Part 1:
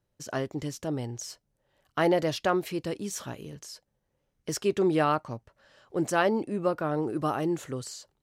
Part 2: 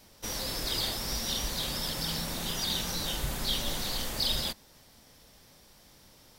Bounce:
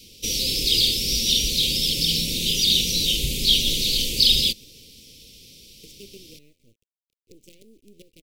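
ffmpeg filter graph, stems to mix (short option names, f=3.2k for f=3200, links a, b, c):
-filter_complex "[0:a]acompressor=threshold=-30dB:ratio=6,flanger=delay=7.9:depth=5.9:regen=87:speed=0.25:shape=triangular,acrusher=bits=6:dc=4:mix=0:aa=0.000001,adelay=1350,volume=-7.5dB[a];[1:a]equalizer=f=3k:w=0.55:g=7.5,acontrast=63,volume=1.5dB[b];[a][b]amix=inputs=2:normalize=0,aeval=exprs='0.631*(cos(1*acos(clip(val(0)/0.631,-1,1)))-cos(1*PI/2))+0.0224*(cos(3*acos(clip(val(0)/0.631,-1,1)))-cos(3*PI/2))':c=same,asuperstop=centerf=1100:order=12:qfactor=0.57"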